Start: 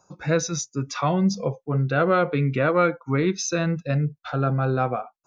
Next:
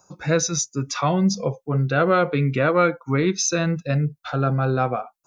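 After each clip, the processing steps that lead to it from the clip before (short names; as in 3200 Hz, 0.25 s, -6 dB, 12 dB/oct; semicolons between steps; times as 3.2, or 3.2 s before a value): high shelf 6200 Hz +9 dB; gain +1.5 dB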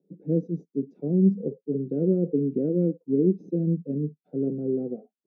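added harmonics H 2 -10 dB, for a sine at -7.5 dBFS; elliptic band-pass 170–440 Hz, stop band 50 dB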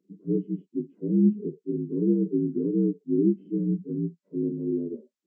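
inharmonic rescaling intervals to 78%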